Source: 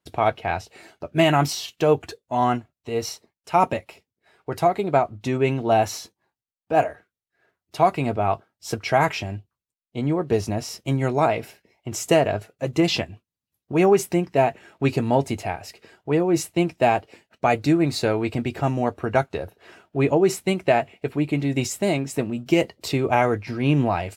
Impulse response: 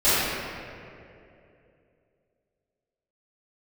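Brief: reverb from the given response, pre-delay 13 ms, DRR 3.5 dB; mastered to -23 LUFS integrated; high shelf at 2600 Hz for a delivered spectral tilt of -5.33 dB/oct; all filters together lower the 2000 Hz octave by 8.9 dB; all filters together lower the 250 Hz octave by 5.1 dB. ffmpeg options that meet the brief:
-filter_complex "[0:a]equalizer=f=250:t=o:g=-7.5,equalizer=f=2k:t=o:g=-8.5,highshelf=f=2.6k:g=-6.5,asplit=2[a][b];[1:a]atrim=start_sample=2205,adelay=13[c];[b][c]afir=irnorm=-1:irlink=0,volume=-24dB[d];[a][d]amix=inputs=2:normalize=0,volume=1.5dB"

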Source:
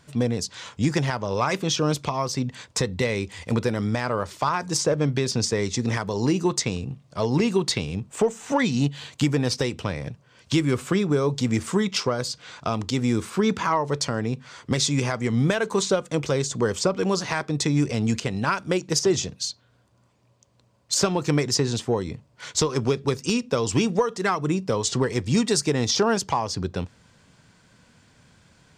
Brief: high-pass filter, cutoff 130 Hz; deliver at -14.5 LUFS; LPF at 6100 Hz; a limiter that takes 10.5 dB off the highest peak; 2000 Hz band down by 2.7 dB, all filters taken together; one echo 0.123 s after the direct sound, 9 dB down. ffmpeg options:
-af "highpass=130,lowpass=6.1k,equalizer=f=2k:t=o:g=-3.5,alimiter=limit=-19dB:level=0:latency=1,aecho=1:1:123:0.355,volume=14.5dB"

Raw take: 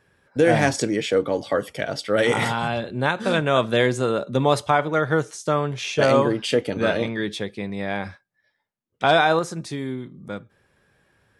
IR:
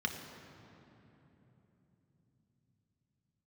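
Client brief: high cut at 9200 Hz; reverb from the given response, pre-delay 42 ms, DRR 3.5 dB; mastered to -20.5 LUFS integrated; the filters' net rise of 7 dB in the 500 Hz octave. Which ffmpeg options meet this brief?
-filter_complex "[0:a]lowpass=9.2k,equalizer=f=500:t=o:g=8,asplit=2[a][b];[1:a]atrim=start_sample=2205,adelay=42[c];[b][c]afir=irnorm=-1:irlink=0,volume=-8dB[d];[a][d]amix=inputs=2:normalize=0,volume=-4.5dB"

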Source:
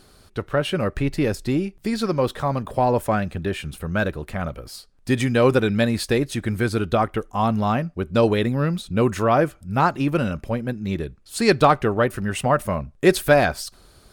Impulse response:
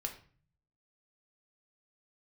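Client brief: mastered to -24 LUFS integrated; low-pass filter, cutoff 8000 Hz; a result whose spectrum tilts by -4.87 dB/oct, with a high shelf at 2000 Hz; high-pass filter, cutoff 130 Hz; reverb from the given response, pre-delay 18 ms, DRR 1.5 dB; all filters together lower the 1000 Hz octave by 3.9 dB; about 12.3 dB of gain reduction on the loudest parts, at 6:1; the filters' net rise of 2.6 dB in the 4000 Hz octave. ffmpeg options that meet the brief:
-filter_complex "[0:a]highpass=130,lowpass=8k,equalizer=f=1k:t=o:g=-5,highshelf=f=2k:g=-3,equalizer=f=4k:t=o:g=6.5,acompressor=threshold=-25dB:ratio=6,asplit=2[a][b];[1:a]atrim=start_sample=2205,adelay=18[c];[b][c]afir=irnorm=-1:irlink=0,volume=-1.5dB[d];[a][d]amix=inputs=2:normalize=0,volume=4dB"

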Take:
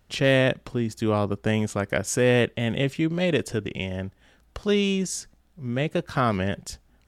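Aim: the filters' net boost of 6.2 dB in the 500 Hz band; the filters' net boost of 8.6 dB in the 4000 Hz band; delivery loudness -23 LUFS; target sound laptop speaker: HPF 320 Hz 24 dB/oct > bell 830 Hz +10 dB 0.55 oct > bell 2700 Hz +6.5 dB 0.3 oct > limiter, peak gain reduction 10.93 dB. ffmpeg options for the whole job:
-af "highpass=f=320:w=0.5412,highpass=f=320:w=1.3066,equalizer=f=500:t=o:g=5.5,equalizer=f=830:t=o:w=0.55:g=10,equalizer=f=2.7k:t=o:w=0.3:g=6.5,equalizer=f=4k:t=o:g=8.5,volume=3.5dB,alimiter=limit=-11dB:level=0:latency=1"

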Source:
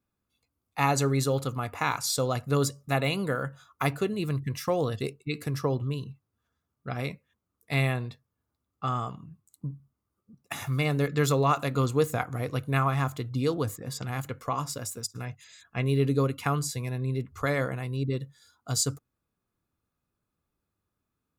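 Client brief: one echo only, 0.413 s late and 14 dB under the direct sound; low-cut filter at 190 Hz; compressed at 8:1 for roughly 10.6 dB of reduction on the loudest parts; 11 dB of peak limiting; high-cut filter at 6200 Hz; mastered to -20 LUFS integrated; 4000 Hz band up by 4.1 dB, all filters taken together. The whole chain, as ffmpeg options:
-af "highpass=190,lowpass=6.2k,equalizer=f=4k:t=o:g=6,acompressor=threshold=-30dB:ratio=8,alimiter=level_in=1.5dB:limit=-24dB:level=0:latency=1,volume=-1.5dB,aecho=1:1:413:0.2,volume=18.5dB"

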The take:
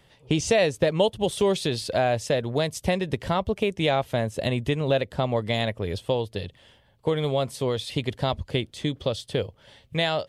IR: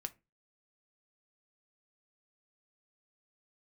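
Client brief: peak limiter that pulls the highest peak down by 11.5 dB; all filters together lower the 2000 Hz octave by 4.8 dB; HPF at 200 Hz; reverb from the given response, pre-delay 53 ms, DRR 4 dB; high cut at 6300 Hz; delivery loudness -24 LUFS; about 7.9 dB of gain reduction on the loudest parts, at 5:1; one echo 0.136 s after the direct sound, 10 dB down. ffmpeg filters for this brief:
-filter_complex "[0:a]highpass=200,lowpass=6.3k,equalizer=f=2k:t=o:g=-6,acompressor=threshold=-26dB:ratio=5,alimiter=level_in=1dB:limit=-24dB:level=0:latency=1,volume=-1dB,aecho=1:1:136:0.316,asplit=2[a][b];[1:a]atrim=start_sample=2205,adelay=53[c];[b][c]afir=irnorm=-1:irlink=0,volume=-1.5dB[d];[a][d]amix=inputs=2:normalize=0,volume=11dB"

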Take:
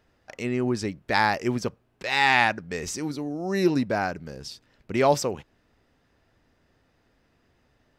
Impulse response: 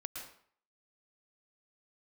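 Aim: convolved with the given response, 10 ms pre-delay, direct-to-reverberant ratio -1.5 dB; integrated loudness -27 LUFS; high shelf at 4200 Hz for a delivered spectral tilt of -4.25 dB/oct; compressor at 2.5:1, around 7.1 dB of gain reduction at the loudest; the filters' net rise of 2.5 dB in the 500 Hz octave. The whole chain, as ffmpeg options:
-filter_complex "[0:a]equalizer=f=500:t=o:g=3.5,highshelf=f=4.2k:g=-7.5,acompressor=threshold=-24dB:ratio=2.5,asplit=2[a][b];[1:a]atrim=start_sample=2205,adelay=10[c];[b][c]afir=irnorm=-1:irlink=0,volume=2.5dB[d];[a][d]amix=inputs=2:normalize=0,volume=-1dB"

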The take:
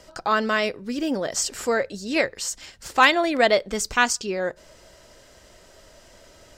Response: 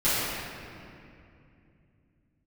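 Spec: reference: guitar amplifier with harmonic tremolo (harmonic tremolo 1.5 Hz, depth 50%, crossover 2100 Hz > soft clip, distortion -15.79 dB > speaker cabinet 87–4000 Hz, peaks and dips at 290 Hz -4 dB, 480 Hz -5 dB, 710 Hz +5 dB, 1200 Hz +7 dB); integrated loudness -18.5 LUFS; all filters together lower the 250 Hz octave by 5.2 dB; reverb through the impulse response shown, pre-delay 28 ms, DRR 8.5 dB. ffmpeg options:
-filter_complex "[0:a]equalizer=f=250:t=o:g=-4,asplit=2[a][b];[1:a]atrim=start_sample=2205,adelay=28[c];[b][c]afir=irnorm=-1:irlink=0,volume=-24dB[d];[a][d]amix=inputs=2:normalize=0,acrossover=split=2100[e][f];[e]aeval=exprs='val(0)*(1-0.5/2+0.5/2*cos(2*PI*1.5*n/s))':c=same[g];[f]aeval=exprs='val(0)*(1-0.5/2-0.5/2*cos(2*PI*1.5*n/s))':c=same[h];[g][h]amix=inputs=2:normalize=0,asoftclip=threshold=-12.5dB,highpass=87,equalizer=f=290:t=q:w=4:g=-4,equalizer=f=480:t=q:w=4:g=-5,equalizer=f=710:t=q:w=4:g=5,equalizer=f=1.2k:t=q:w=4:g=7,lowpass=f=4k:w=0.5412,lowpass=f=4k:w=1.3066,volume=6.5dB"

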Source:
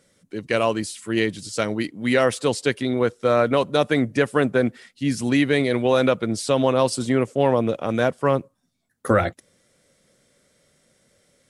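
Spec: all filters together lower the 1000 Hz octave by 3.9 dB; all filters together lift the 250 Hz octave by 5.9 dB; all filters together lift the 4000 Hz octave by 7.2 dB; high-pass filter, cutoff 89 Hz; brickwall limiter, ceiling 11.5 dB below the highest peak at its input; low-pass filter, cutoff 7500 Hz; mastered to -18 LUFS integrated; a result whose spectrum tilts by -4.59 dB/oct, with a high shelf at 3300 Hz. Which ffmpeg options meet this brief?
-af "highpass=89,lowpass=7.5k,equalizer=f=250:t=o:g=7,equalizer=f=1k:t=o:g=-7,highshelf=f=3.3k:g=5.5,equalizer=f=4k:t=o:g=6,volume=7dB,alimiter=limit=-8dB:level=0:latency=1"

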